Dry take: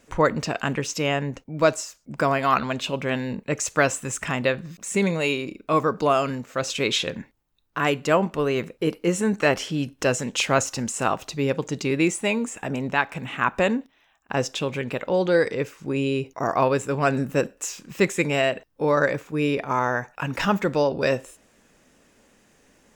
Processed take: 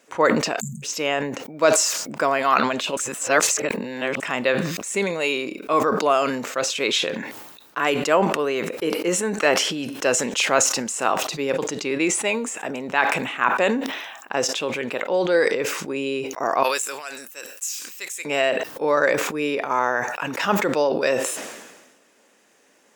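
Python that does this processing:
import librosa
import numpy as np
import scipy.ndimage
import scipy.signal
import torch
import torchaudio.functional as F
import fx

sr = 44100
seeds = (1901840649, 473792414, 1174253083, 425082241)

y = fx.spec_erase(x, sr, start_s=0.6, length_s=0.23, low_hz=230.0, high_hz=6200.0)
y = fx.high_shelf(y, sr, hz=11000.0, db=-8.5, at=(11.76, 12.28))
y = fx.differentiator(y, sr, at=(16.63, 18.25))
y = fx.edit(y, sr, fx.reverse_span(start_s=2.97, length_s=1.23), tone=tone)
y = scipy.signal.sosfilt(scipy.signal.butter(2, 340.0, 'highpass', fs=sr, output='sos'), y)
y = fx.sustainer(y, sr, db_per_s=45.0)
y = y * 10.0 ** (1.5 / 20.0)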